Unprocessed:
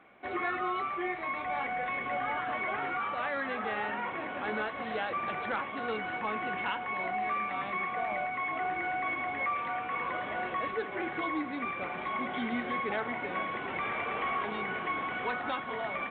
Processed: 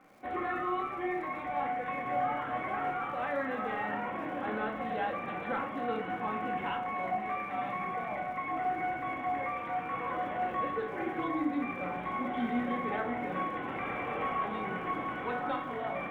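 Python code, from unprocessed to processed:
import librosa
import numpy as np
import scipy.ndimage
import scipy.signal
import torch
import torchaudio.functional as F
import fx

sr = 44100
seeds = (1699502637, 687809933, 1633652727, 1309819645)

y = fx.high_shelf(x, sr, hz=2200.0, db=-10.5)
y = fx.dmg_crackle(y, sr, seeds[0], per_s=170.0, level_db=-54.0)
y = fx.room_shoebox(y, sr, seeds[1], volume_m3=550.0, walls='furnished', distance_m=2.1)
y = y * librosa.db_to_amplitude(-1.5)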